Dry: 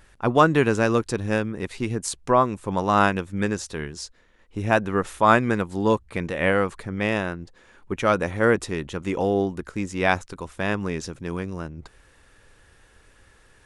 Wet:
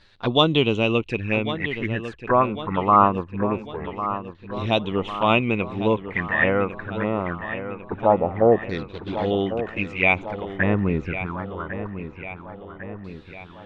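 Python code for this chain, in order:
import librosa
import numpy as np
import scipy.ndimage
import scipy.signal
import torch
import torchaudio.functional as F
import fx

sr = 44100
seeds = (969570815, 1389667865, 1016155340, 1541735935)

y = fx.median_filter(x, sr, points=41, at=(8.78, 9.31))
y = fx.low_shelf(y, sr, hz=330.0, db=9.0, at=(10.51, 11.25), fade=0.02)
y = fx.env_flanger(y, sr, rest_ms=10.9, full_db=-20.0)
y = fx.filter_lfo_lowpass(y, sr, shape='saw_down', hz=0.23, low_hz=670.0, high_hz=4200.0, q=7.0)
y = fx.echo_filtered(y, sr, ms=1100, feedback_pct=59, hz=3900.0, wet_db=-11.0)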